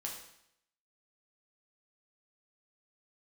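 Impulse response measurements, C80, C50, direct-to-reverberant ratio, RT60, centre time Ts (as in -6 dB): 7.5 dB, 4.5 dB, -1.5 dB, 0.75 s, 37 ms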